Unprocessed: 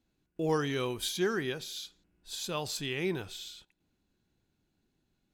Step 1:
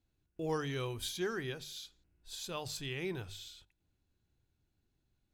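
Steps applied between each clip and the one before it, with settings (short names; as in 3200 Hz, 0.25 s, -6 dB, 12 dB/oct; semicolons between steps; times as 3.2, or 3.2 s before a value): resonant low shelf 140 Hz +7.5 dB, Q 1.5; notches 50/100/150/200/250 Hz; gain -5.5 dB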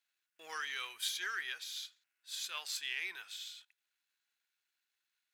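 half-wave gain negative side -3 dB; resonant high-pass 1700 Hz, resonance Q 1.5; gain +3.5 dB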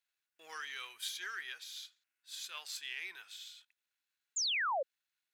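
painted sound fall, 4.36–4.83, 500–7500 Hz -30 dBFS; gain -3.5 dB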